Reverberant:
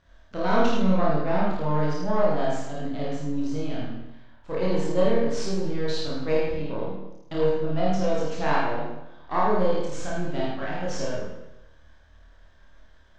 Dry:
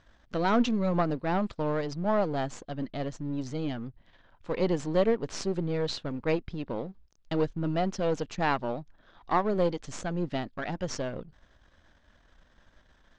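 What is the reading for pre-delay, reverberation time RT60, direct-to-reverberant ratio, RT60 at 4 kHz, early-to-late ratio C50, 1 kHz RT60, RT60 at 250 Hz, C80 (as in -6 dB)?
26 ms, 0.95 s, -7.0 dB, 0.80 s, -1.5 dB, 0.90 s, 0.90 s, 2.0 dB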